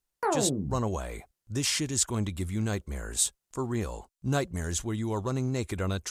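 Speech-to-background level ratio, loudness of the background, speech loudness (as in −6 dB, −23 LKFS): 0.5 dB, −31.0 LKFS, −30.5 LKFS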